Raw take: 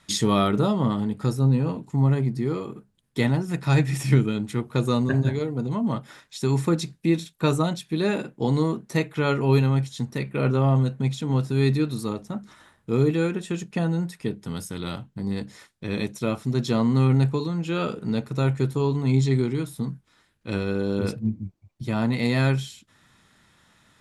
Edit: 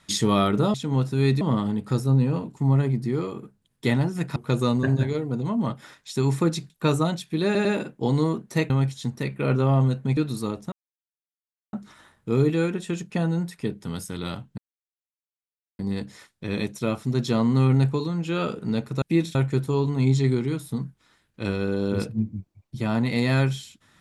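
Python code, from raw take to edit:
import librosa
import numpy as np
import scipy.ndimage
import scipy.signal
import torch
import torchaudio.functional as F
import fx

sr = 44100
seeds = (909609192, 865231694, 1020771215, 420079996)

y = fx.edit(x, sr, fx.cut(start_s=3.69, length_s=0.93),
    fx.move(start_s=6.96, length_s=0.33, to_s=18.42),
    fx.stutter(start_s=8.04, slice_s=0.1, count=3),
    fx.cut(start_s=9.09, length_s=0.56),
    fx.move(start_s=11.12, length_s=0.67, to_s=0.74),
    fx.insert_silence(at_s=12.34, length_s=1.01),
    fx.insert_silence(at_s=15.19, length_s=1.21), tone=tone)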